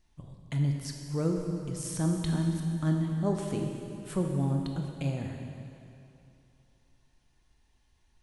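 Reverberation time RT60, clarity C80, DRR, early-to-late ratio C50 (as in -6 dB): 2.7 s, 4.0 dB, 2.0 dB, 3.0 dB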